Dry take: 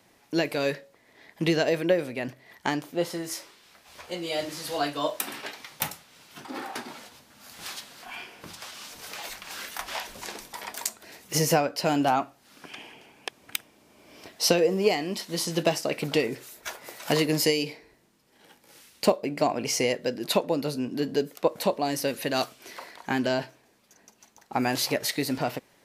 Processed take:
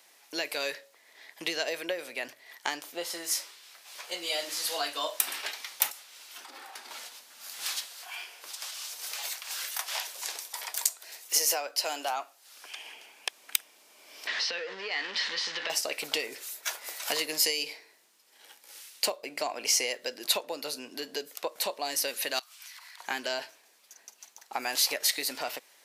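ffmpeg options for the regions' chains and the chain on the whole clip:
-filter_complex "[0:a]asettb=1/sr,asplit=3[s0][s1][s2];[s0]atrim=end=5.904[s3];[s1]atrim=start=5.9:end=6.91,asetpts=PTS-STARTPTS,afade=t=in:d=0.004:c=qsin,afade=t=out:st=1.006:d=0.004:c=qsin,highpass=220,acompressor=threshold=0.00708:ratio=4:attack=3.2:release=140:knee=1:detection=peak[s4];[s2]atrim=start=6.906[s5];[s3][s4]acrossfade=d=0.004:c1=hsin:c2=qsin[s6];[s6][s5]acrossfade=d=0.004:c1=qsin:c2=hsin,asettb=1/sr,asplit=3[s7][s8][s9];[s7]atrim=end=7.864[s10];[s8]atrim=start=7.86:end=12.86,asetpts=PTS-STARTPTS,afade=t=in:d=0.004:c=qsin,afade=t=out:st=4.996:d=0.004:c=qsin,highpass=430,equalizer=f=1800:w=0.47:g=-3.5[s11];[s9]atrim=start=12.856[s12];[s10][s11]acrossfade=d=0.004:c1=hsin:c2=qsin[s13];[s13][s12]acrossfade=d=0.004:c1=qsin:c2=hsin,asettb=1/sr,asplit=3[s14][s15][s16];[s14]atrim=end=14.274[s17];[s15]atrim=start=14.27:end=15.7,asetpts=PTS-STARTPTS,afade=t=in:d=0.004:c=qsin,afade=t=out:st=1.426:d=0.004:c=qsin,aeval=exprs='val(0)+0.5*0.0376*sgn(val(0))':c=same,acompressor=threshold=0.0501:ratio=5:attack=3.2:release=140:knee=1:detection=peak,highpass=230,equalizer=f=340:t=q:w=4:g=-9,equalizer=f=680:t=q:w=4:g=-8,equalizer=f=1800:t=q:w=4:g=9,lowpass=f=4400:w=0.5412,lowpass=f=4400:w=1.3066[s18];[s16]atrim=start=15.696[s19];[s17][s18]acrossfade=d=0.004:c1=hsin:c2=qsin[s20];[s20][s19]acrossfade=d=0.004:c1=qsin:c2=hsin,asettb=1/sr,asplit=3[s21][s22][s23];[s21]atrim=end=22.394[s24];[s22]atrim=start=22.39:end=23,asetpts=PTS-STARTPTS,afade=t=in:d=0.004:c=qsin,afade=t=out:st=0.606:d=0.004:c=qsin,highpass=f=940:w=0.5412,highpass=f=940:w=1.3066,acompressor=threshold=0.00447:ratio=10:attack=3.2:release=140:knee=1:detection=peak[s25];[s23]atrim=start=22.996[s26];[s24][s25]acrossfade=d=0.004:c1=hsin:c2=qsin[s27];[s27][s26]acrossfade=d=0.004:c1=qsin:c2=hsin,acompressor=threshold=0.0398:ratio=2,highpass=520,highshelf=f=2100:g=10,volume=0.708"

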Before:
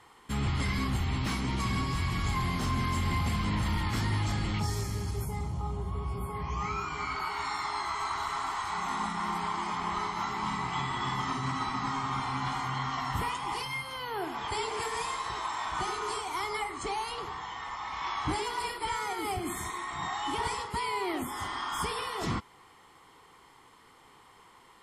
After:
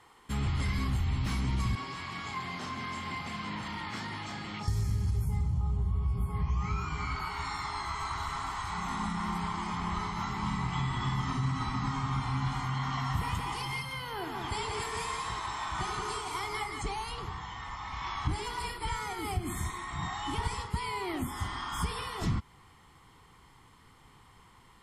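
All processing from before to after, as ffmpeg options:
-filter_complex "[0:a]asettb=1/sr,asplit=3[s0][s1][s2];[s0]atrim=end=1.754[s3];[s1]atrim=start=1.75:end=4.68,asetpts=PTS-STARTPTS,afade=t=in:d=0.004:c=qsin,afade=t=out:st=2.926:d=0.004:c=qsin,highpass=380,lowpass=7700,highshelf=f=4600:g=-5,asplit=2[s4][s5];[s5]adelay=33,volume=0.282[s6];[s4][s6]amix=inputs=2:normalize=0,atrim=end_sample=129213[s7];[s2]atrim=start=4.676[s8];[s3][s7]acrossfade=d=0.004:c1=hsin:c2=qsin[s9];[s9][s8]acrossfade=d=0.004:c1=qsin:c2=hsin,asettb=1/sr,asplit=3[s10][s11][s12];[s10]atrim=end=12.654[s13];[s11]atrim=start=12.65:end=16.82,asetpts=PTS-STARTPTS,afade=t=in:d=0.004:c=qsin,afade=t=out:st=4.166:d=0.004:c=qsin,lowshelf=f=120:g=-7.5,aecho=1:1:178:0.596,atrim=end_sample=183897[s14];[s12]atrim=start=16.816[s15];[s13][s14]acrossfade=d=0.004:c1=hsin:c2=qsin[s16];[s16][s15]acrossfade=d=0.004:c1=qsin:c2=hsin,asubboost=boost=4.5:cutoff=190,acompressor=threshold=0.0631:ratio=6,volume=0.794"

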